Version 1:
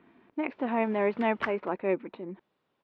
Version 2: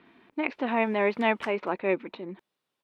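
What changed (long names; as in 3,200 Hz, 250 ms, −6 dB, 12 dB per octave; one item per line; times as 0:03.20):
background −10.5 dB
master: remove head-to-tape spacing loss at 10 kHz 30 dB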